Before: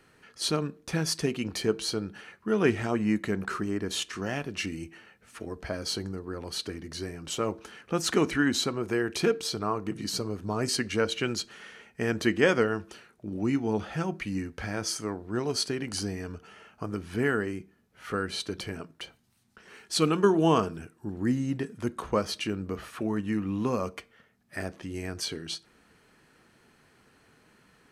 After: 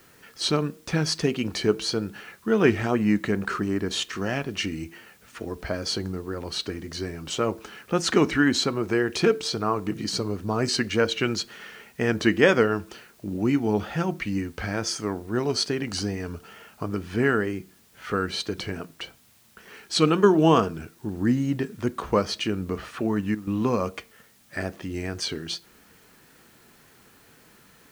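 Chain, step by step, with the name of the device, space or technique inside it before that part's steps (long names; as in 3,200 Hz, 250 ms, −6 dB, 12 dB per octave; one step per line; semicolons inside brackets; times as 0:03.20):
worn cassette (low-pass filter 6,800 Hz 12 dB per octave; tape wow and flutter; tape dropouts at 0:23.35, 120 ms −12 dB; white noise bed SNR 33 dB)
level +4.5 dB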